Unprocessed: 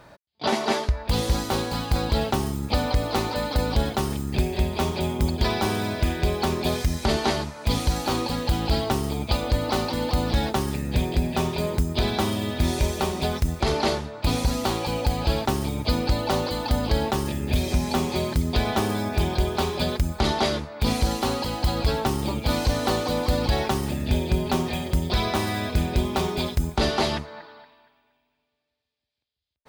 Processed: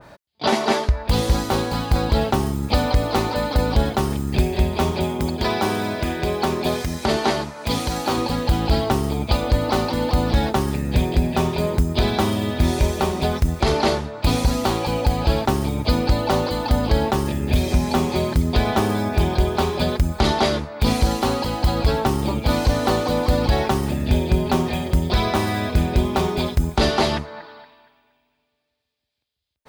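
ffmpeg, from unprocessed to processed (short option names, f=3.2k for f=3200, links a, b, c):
-filter_complex "[0:a]asettb=1/sr,asplit=3[a][b][c];[a]atrim=end=5.044[d];[b]atrim=start=5.04:end=8.17,asetpts=PTS-STARTPTS,afade=t=in:d=0.004:c=qsin,afade=t=out:st=3.126:d=0.004:c=qsin,highpass=f=170:p=1[e];[c]atrim=start=8.166[f];[d][e]acrossfade=d=0.004:c1=hsin:c2=qsin[g];[g][f]acrossfade=d=0.004:c1=qsin:c2=hsin,adynamicequalizer=threshold=0.00794:dfrequency=2200:dqfactor=0.7:tfrequency=2200:tqfactor=0.7:attack=5:release=100:ratio=0.375:range=2:mode=cutabove:tftype=highshelf,volume=4.5dB"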